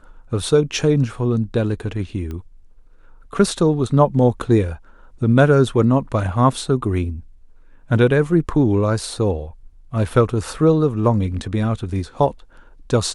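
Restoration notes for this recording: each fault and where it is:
2.31 s: pop -19 dBFS

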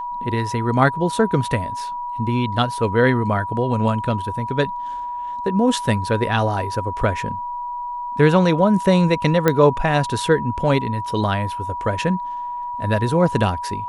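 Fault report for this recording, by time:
whine 970 Hz -25 dBFS
9.48 s: pop -3 dBFS

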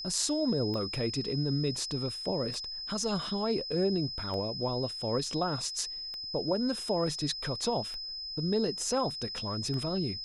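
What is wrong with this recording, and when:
tick 33 1/3 rpm -26 dBFS
whine 5.1 kHz -37 dBFS

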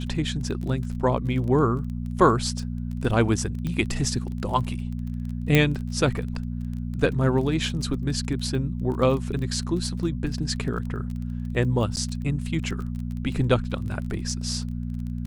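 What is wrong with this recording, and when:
crackle 22 per s -32 dBFS
hum 60 Hz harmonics 4 -30 dBFS
3.67 s: pop -18 dBFS
5.55 s: pop -5 dBFS
10.34 s: dropout 2.1 ms
11.96–11.97 s: dropout 9.2 ms

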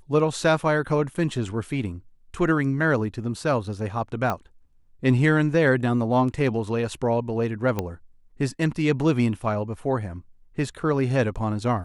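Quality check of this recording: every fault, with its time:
4.30 s: pop -13 dBFS
7.79 s: pop -12 dBFS

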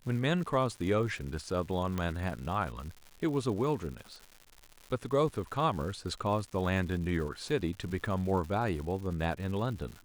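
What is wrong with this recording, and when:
crackle 210 per s -40 dBFS
1.98 s: pop -20 dBFS

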